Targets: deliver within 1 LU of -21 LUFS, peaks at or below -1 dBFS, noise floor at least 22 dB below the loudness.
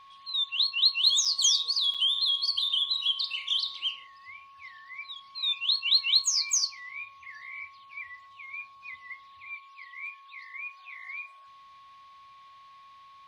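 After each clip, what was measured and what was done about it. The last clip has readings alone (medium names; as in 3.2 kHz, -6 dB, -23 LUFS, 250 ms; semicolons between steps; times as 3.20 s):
dropouts 2; longest dropout 5.6 ms; steady tone 1.1 kHz; tone level -50 dBFS; loudness -24.5 LUFS; peak level -12.0 dBFS; loudness target -21.0 LUFS
-> interpolate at 1.25/1.94 s, 5.6 ms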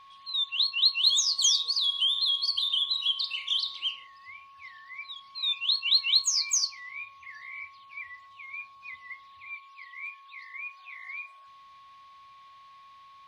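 dropouts 0; steady tone 1.1 kHz; tone level -50 dBFS
-> band-stop 1.1 kHz, Q 30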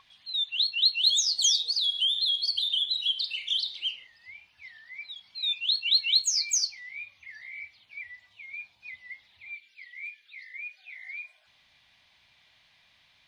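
steady tone not found; loudness -24.5 LUFS; peak level -12.0 dBFS; loudness target -21.0 LUFS
-> trim +3.5 dB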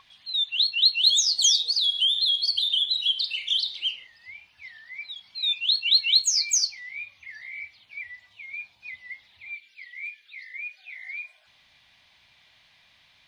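loudness -21.0 LUFS; peak level -8.5 dBFS; noise floor -61 dBFS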